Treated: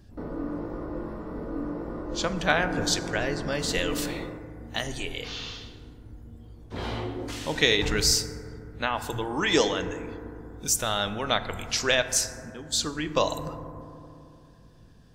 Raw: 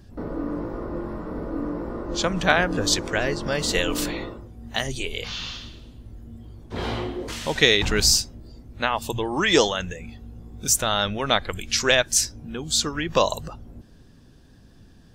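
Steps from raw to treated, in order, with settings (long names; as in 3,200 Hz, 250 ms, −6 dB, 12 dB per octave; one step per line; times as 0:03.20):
0:12.50–0:13.30: downward expander −25 dBFS
feedback delay network reverb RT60 2.8 s, low-frequency decay 1.4×, high-frequency decay 0.25×, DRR 9 dB
level −4.5 dB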